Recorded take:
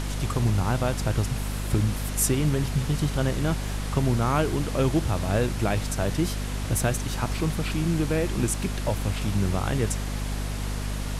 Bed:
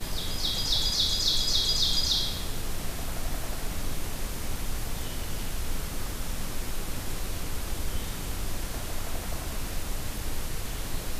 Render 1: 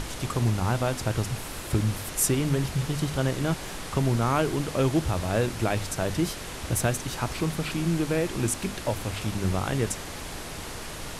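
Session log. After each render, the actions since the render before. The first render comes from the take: notches 50/100/150/200/250 Hz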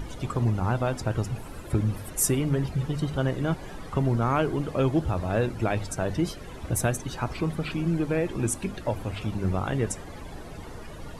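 denoiser 15 dB, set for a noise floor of -37 dBFS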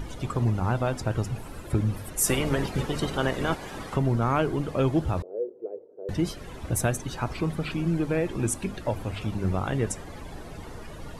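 2.25–3.95 spectral limiter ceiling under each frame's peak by 15 dB; 5.22–6.09 Butterworth band-pass 440 Hz, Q 3.4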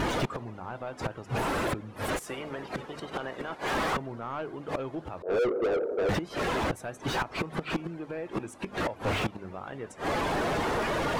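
flipped gate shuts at -20 dBFS, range -33 dB; overdrive pedal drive 36 dB, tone 1400 Hz, clips at -19 dBFS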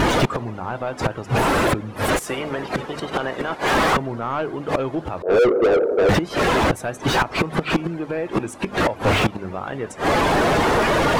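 gain +11 dB

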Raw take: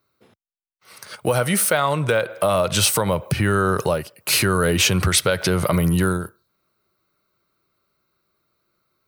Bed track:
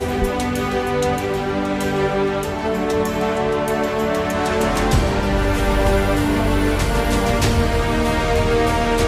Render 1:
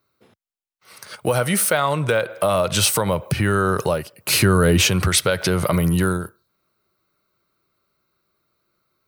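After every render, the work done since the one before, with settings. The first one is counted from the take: 4.13–4.87 low shelf 350 Hz +6.5 dB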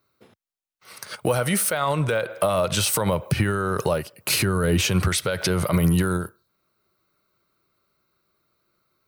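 limiter -13 dBFS, peak gain reduction 9 dB; transient shaper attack +3 dB, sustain -1 dB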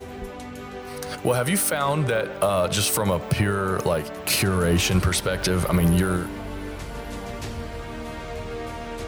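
add bed track -15.5 dB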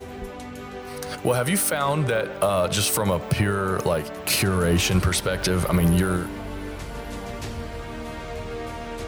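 nothing audible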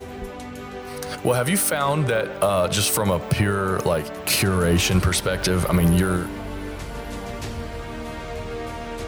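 gain +1.5 dB

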